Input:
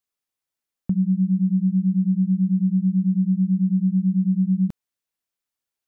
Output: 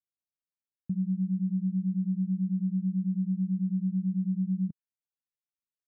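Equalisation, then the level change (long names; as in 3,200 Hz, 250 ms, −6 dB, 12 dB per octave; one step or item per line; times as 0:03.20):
resonant band-pass 160 Hz, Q 1.5
−8.0 dB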